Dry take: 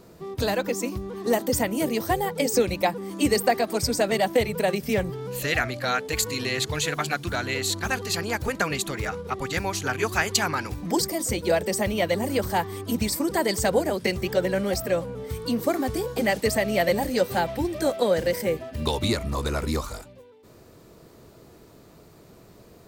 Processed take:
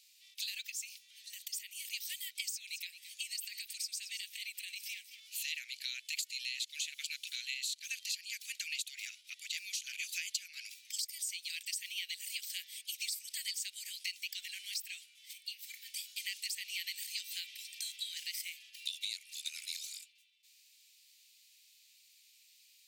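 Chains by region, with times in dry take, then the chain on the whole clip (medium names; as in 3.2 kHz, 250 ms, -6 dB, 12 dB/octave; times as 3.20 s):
0.69–1.85 s: bass shelf 170 Hz -5.5 dB + compression 5:1, threshold -29 dBFS
2.51–5.20 s: compression 2.5:1, threshold -29 dBFS + delay 219 ms -13.5 dB
15.33–15.94 s: steep high-pass 1.6 kHz + peaking EQ 8.4 kHz -9 dB 2.4 oct + doubling 32 ms -12.5 dB
whole clip: steep high-pass 2.4 kHz 48 dB/octave; treble shelf 12 kHz -7 dB; compression 5:1, threshold -36 dBFS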